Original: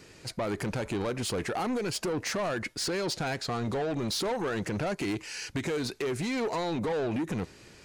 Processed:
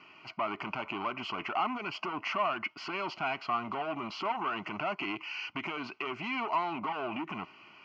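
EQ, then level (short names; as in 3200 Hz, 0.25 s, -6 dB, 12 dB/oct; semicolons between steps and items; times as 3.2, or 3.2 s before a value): speaker cabinet 320–3400 Hz, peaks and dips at 620 Hz +6 dB, 1100 Hz +7 dB, 1500 Hz +6 dB, 2900 Hz +8 dB; fixed phaser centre 2500 Hz, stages 8; +1.0 dB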